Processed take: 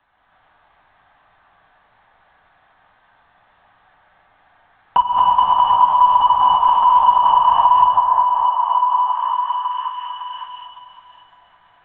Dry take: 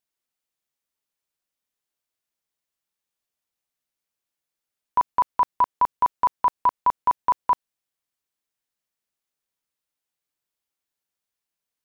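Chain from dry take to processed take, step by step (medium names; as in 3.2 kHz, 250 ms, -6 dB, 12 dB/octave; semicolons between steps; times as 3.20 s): backward echo that repeats 104 ms, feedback 53%, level -6 dB; treble shelf 2.3 kHz -6 dB; in parallel at +2 dB: compression, threshold -28 dBFS, peak gain reduction 15.5 dB; on the sum: hard clipper -20 dBFS, distortion -7 dB; LPC vocoder at 8 kHz whisper; high-order bell 1.1 kHz +13.5 dB; band-stop 1.4 kHz, Q 12; on a send: repeats whose band climbs or falls 558 ms, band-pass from 560 Hz, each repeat 0.7 oct, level -7 dB; on the sum: gated-style reverb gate 360 ms rising, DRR -6 dB; three bands compressed up and down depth 70%; trim -5 dB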